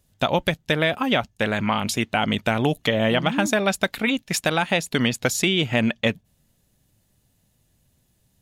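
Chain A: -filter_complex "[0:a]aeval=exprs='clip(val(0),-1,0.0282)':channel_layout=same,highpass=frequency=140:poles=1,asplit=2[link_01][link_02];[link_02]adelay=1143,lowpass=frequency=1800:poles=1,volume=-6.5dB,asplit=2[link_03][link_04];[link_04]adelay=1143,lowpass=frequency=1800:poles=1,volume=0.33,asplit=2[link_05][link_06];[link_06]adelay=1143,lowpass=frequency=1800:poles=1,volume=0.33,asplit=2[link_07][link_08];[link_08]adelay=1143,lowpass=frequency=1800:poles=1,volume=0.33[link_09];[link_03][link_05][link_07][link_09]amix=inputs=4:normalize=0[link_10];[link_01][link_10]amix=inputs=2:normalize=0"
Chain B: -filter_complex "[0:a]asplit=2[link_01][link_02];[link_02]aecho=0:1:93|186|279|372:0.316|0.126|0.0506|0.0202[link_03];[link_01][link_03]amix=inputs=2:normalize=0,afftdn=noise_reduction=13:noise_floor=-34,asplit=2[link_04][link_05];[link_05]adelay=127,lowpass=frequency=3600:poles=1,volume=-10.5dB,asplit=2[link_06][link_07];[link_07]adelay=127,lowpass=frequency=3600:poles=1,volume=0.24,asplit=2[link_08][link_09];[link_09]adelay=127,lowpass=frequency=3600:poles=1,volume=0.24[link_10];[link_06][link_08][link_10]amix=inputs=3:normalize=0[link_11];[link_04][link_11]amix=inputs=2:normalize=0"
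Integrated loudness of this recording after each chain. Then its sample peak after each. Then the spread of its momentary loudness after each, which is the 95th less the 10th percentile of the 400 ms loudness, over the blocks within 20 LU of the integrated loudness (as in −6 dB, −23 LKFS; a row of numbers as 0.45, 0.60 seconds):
−26.0, −21.5 LKFS; −10.0, −6.0 dBFS; 14, 4 LU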